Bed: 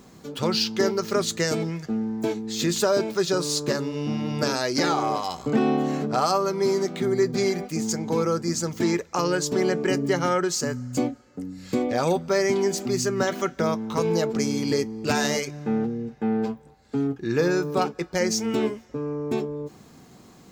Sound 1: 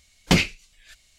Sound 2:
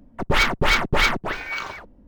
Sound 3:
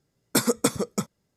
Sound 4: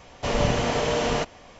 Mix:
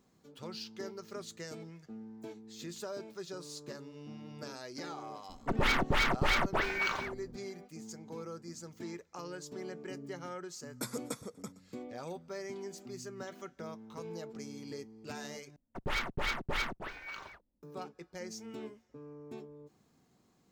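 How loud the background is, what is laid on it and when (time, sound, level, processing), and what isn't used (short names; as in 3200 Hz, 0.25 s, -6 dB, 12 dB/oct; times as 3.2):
bed -20 dB
5.29 add 2 -3.5 dB + compressor, threshold -20 dBFS
10.46 add 3 -17 dB + feedback echo 0.121 s, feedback 29%, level -19 dB
15.56 replace with 2 -15.5 dB + gate -41 dBFS, range -15 dB
not used: 1, 4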